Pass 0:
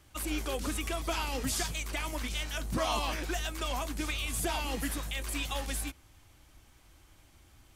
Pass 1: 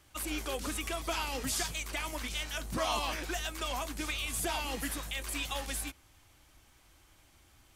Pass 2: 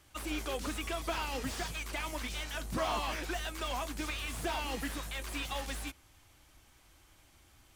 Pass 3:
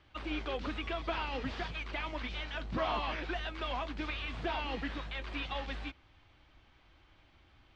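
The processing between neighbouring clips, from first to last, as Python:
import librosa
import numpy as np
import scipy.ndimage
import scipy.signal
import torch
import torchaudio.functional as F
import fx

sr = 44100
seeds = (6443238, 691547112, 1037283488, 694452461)

y1 = fx.low_shelf(x, sr, hz=380.0, db=-5.0)
y2 = fx.slew_limit(y1, sr, full_power_hz=44.0)
y3 = scipy.signal.sosfilt(scipy.signal.butter(4, 3900.0, 'lowpass', fs=sr, output='sos'), y2)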